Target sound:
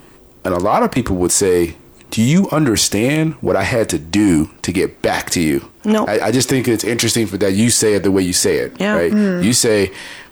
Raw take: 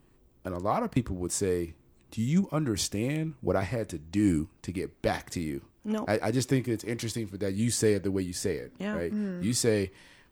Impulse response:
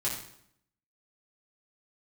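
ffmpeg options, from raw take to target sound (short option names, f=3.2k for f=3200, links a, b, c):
-filter_complex "[0:a]asplit=2[a][b];[b]asoftclip=type=tanh:threshold=-27.5dB,volume=-5dB[c];[a][c]amix=inputs=2:normalize=0,lowshelf=f=210:g=-11.5,alimiter=level_in=23.5dB:limit=-1dB:release=50:level=0:latency=1,volume=-4dB"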